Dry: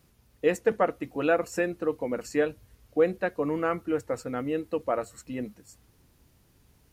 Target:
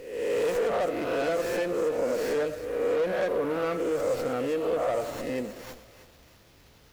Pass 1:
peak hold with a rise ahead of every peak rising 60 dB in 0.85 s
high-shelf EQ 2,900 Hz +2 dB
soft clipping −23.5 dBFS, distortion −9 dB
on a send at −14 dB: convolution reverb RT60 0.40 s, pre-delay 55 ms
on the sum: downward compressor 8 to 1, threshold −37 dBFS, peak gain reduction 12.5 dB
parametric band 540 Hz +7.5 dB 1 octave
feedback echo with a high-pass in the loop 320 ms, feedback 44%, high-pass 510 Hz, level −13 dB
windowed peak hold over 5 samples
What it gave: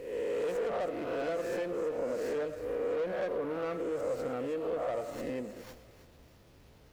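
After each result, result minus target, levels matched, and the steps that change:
downward compressor: peak gain reduction +6.5 dB; 8,000 Hz band −4.0 dB
change: downward compressor 8 to 1, threshold −29.5 dBFS, peak gain reduction 6 dB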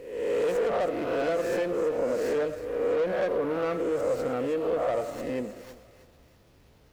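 8,000 Hz band −4.5 dB
change: high-shelf EQ 2,900 Hz +11.5 dB

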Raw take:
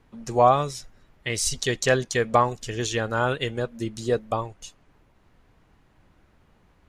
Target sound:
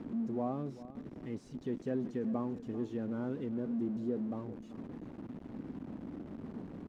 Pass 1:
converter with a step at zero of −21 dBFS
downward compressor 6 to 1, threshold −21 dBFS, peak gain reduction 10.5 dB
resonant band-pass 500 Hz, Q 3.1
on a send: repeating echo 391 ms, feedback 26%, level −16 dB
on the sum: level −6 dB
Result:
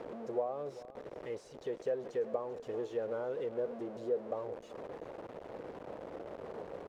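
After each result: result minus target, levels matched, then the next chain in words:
250 Hz band −10.5 dB; downward compressor: peak gain reduction +10.5 dB
converter with a step at zero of −21 dBFS
downward compressor 6 to 1, threshold −21 dBFS, peak gain reduction 10.5 dB
resonant band-pass 250 Hz, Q 3.1
on a send: repeating echo 391 ms, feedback 26%, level −16 dB
on the sum: level −6 dB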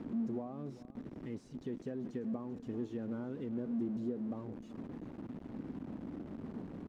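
downward compressor: peak gain reduction +10.5 dB
converter with a step at zero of −21 dBFS
resonant band-pass 250 Hz, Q 3.1
on a send: repeating echo 391 ms, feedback 26%, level −16 dB
on the sum: level −6 dB

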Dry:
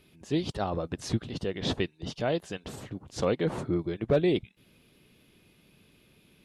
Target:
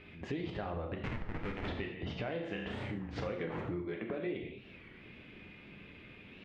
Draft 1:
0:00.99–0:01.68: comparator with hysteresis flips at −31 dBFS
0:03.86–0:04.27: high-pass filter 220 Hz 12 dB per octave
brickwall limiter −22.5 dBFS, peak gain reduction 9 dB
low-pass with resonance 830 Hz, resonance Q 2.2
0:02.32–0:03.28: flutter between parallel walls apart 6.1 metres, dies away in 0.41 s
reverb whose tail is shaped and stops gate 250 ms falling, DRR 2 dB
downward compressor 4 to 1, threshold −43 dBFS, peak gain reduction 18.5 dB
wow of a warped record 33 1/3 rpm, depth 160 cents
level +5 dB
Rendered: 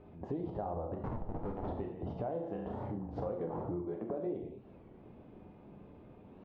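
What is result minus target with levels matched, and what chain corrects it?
2,000 Hz band −17.5 dB
0:00.99–0:01.68: comparator with hysteresis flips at −31 dBFS
0:03.86–0:04.27: high-pass filter 220 Hz 12 dB per octave
brickwall limiter −22.5 dBFS, peak gain reduction 9 dB
low-pass with resonance 2,200 Hz, resonance Q 2.2
0:02.32–0:03.28: flutter between parallel walls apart 6.1 metres, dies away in 0.41 s
reverb whose tail is shaped and stops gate 250 ms falling, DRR 2 dB
downward compressor 4 to 1, threshold −43 dBFS, peak gain reduction 17.5 dB
wow of a warped record 33 1/3 rpm, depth 160 cents
level +5 dB

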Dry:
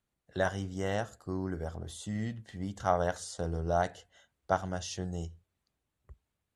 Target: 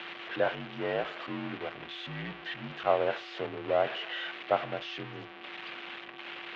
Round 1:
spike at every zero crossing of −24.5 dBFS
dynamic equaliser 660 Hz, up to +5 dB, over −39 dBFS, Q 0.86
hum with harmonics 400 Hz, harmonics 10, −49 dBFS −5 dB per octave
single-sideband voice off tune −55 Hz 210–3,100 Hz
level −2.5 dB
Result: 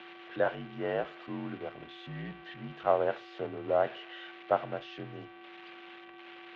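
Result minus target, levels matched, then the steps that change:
spike at every zero crossing: distortion −10 dB
change: spike at every zero crossing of −14.5 dBFS

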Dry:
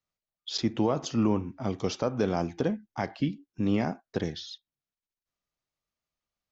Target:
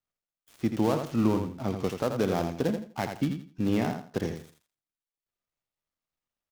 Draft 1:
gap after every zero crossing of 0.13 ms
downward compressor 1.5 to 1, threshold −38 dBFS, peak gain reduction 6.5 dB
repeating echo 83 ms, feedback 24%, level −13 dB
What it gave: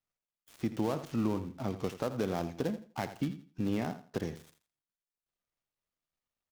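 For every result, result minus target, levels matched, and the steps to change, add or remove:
downward compressor: peak gain reduction +6.5 dB; echo-to-direct −6 dB
remove: downward compressor 1.5 to 1, threshold −38 dBFS, peak gain reduction 6.5 dB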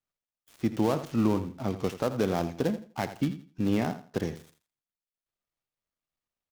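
echo-to-direct −6 dB
change: repeating echo 83 ms, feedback 24%, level −7 dB

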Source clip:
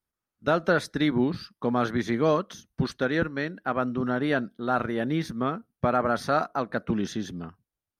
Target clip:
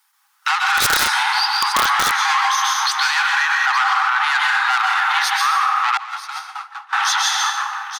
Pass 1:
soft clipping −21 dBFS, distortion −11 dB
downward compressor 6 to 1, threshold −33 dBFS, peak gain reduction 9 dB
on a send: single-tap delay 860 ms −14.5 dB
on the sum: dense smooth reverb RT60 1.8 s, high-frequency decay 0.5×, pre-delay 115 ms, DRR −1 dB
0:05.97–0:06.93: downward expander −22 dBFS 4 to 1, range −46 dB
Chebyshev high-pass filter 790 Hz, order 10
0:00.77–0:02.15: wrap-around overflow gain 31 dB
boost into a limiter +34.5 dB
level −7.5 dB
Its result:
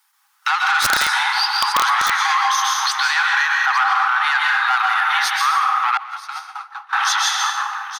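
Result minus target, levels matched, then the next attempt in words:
soft clipping: distortion −4 dB
soft clipping −27 dBFS, distortion −6 dB
downward compressor 6 to 1, threshold −33 dBFS, peak gain reduction 5 dB
on a send: single-tap delay 860 ms −14.5 dB
on the sum: dense smooth reverb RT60 1.8 s, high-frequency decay 0.5×, pre-delay 115 ms, DRR −1 dB
0:05.97–0:06.93: downward expander −22 dBFS 4 to 1, range −46 dB
Chebyshev high-pass filter 790 Hz, order 10
0:00.77–0:02.15: wrap-around overflow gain 31 dB
boost into a limiter +34.5 dB
level −7.5 dB

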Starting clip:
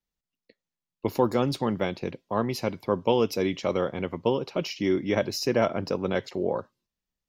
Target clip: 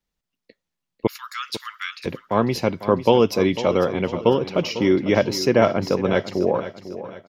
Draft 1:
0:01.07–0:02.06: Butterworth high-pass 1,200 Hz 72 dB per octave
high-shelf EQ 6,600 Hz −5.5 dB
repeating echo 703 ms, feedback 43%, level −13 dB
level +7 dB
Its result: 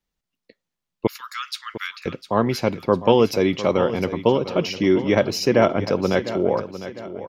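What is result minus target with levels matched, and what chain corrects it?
echo 204 ms late
0:01.07–0:02.06: Butterworth high-pass 1,200 Hz 72 dB per octave
high-shelf EQ 6,600 Hz −5.5 dB
repeating echo 499 ms, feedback 43%, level −13 dB
level +7 dB

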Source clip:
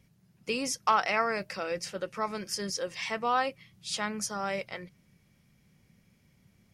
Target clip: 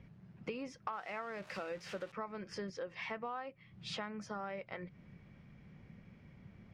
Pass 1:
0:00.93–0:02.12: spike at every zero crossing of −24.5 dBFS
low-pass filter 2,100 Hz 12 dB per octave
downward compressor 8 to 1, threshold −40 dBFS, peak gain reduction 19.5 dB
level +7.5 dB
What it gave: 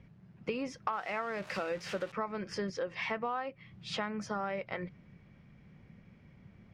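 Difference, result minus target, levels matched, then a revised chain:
downward compressor: peak gain reduction −6.5 dB
0:00.93–0:02.12: spike at every zero crossing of −24.5 dBFS
low-pass filter 2,100 Hz 12 dB per octave
downward compressor 8 to 1, threshold −47.5 dBFS, peak gain reduction 26 dB
level +7.5 dB

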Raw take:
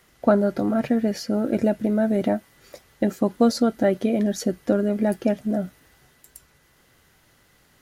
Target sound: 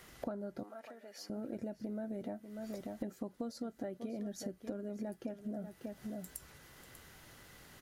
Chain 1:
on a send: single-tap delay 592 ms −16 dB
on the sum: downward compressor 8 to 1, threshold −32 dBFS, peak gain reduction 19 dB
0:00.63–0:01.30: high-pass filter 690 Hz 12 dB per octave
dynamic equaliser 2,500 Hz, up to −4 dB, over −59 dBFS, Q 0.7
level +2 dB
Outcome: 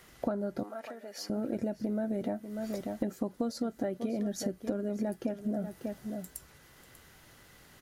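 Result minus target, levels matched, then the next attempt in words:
downward compressor: peak gain reduction −8.5 dB
on a send: single-tap delay 592 ms −16 dB
on the sum: downward compressor 8 to 1, threshold −41.5 dBFS, peak gain reduction 27 dB
0:00.63–0:01.30: high-pass filter 690 Hz 12 dB per octave
dynamic equaliser 2,500 Hz, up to −4 dB, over −59 dBFS, Q 0.7
level +2 dB

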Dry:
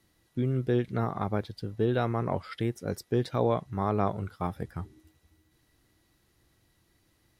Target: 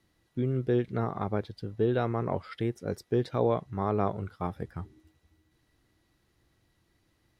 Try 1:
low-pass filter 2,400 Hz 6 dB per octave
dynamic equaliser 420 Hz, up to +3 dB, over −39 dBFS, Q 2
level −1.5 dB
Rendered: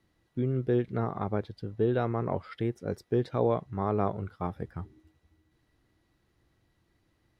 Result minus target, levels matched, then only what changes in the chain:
4,000 Hz band −3.5 dB
change: low-pass filter 5,100 Hz 6 dB per octave

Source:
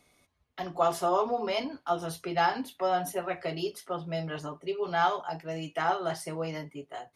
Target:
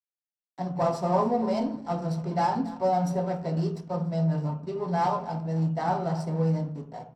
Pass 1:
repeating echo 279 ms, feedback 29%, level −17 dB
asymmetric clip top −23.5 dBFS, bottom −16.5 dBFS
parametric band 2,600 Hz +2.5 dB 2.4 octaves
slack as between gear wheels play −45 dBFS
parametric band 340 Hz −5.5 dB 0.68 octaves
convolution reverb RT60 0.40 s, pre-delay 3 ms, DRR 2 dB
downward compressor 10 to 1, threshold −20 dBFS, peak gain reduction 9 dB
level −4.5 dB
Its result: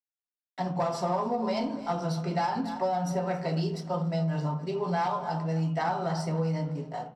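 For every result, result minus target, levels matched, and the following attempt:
downward compressor: peak gain reduction +9 dB; slack as between gear wheels: distortion −9 dB; 2,000 Hz band +5.0 dB
repeating echo 279 ms, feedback 29%, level −17 dB
asymmetric clip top −23.5 dBFS, bottom −16.5 dBFS
parametric band 2,600 Hz +2.5 dB 2.4 octaves
slack as between gear wheels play −45 dBFS
parametric band 340 Hz −5.5 dB 0.68 octaves
convolution reverb RT60 0.40 s, pre-delay 3 ms, DRR 2 dB
level −4.5 dB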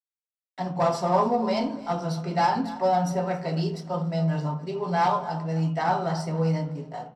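slack as between gear wheels: distortion −9 dB; 2,000 Hz band +5.5 dB
repeating echo 279 ms, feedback 29%, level −17 dB
asymmetric clip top −23.5 dBFS, bottom −16.5 dBFS
parametric band 2,600 Hz +2.5 dB 2.4 octaves
slack as between gear wheels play −37.5 dBFS
parametric band 340 Hz −5.5 dB 0.68 octaves
convolution reverb RT60 0.40 s, pre-delay 3 ms, DRR 2 dB
level −4.5 dB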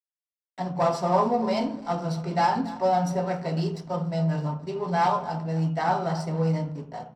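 2,000 Hz band +5.0 dB
repeating echo 279 ms, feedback 29%, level −17 dB
asymmetric clip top −23.5 dBFS, bottom −16.5 dBFS
parametric band 2,600 Hz −5.5 dB 2.4 octaves
slack as between gear wheels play −37.5 dBFS
parametric band 340 Hz −5.5 dB 0.68 octaves
convolution reverb RT60 0.40 s, pre-delay 3 ms, DRR 2 dB
level −4.5 dB

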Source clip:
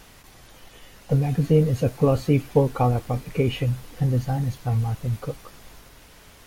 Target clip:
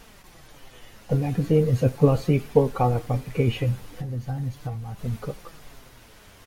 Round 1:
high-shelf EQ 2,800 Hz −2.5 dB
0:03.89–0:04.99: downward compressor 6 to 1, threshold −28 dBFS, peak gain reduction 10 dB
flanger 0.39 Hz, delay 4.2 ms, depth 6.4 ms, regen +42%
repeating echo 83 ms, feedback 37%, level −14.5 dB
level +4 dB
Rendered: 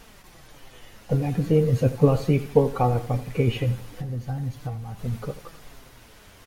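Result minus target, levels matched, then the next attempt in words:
echo-to-direct +10 dB
high-shelf EQ 2,800 Hz −2.5 dB
0:03.89–0:04.99: downward compressor 6 to 1, threshold −28 dBFS, peak gain reduction 10 dB
flanger 0.39 Hz, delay 4.2 ms, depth 6.4 ms, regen +42%
repeating echo 83 ms, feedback 37%, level −24.5 dB
level +4 dB

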